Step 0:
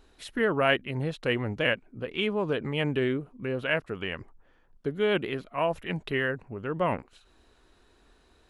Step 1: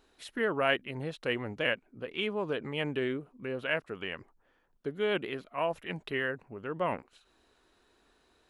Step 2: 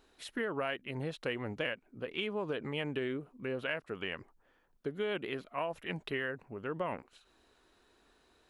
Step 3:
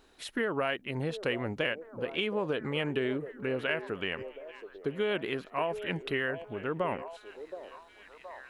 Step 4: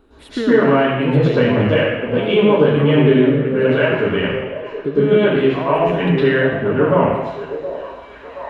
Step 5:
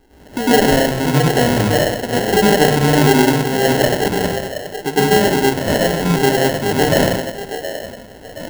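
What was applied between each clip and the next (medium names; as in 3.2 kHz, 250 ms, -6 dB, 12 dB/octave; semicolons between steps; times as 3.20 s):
bass shelf 130 Hz -11 dB; trim -3.5 dB
compression 12:1, threshold -31 dBFS, peak gain reduction 10.5 dB
repeats whose band climbs or falls 722 ms, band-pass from 490 Hz, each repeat 0.7 oct, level -9 dB; trim +4.5 dB
reverberation RT60 1.1 s, pre-delay 103 ms, DRR -11 dB; trim -1.5 dB
sample-rate reducer 1.2 kHz, jitter 0%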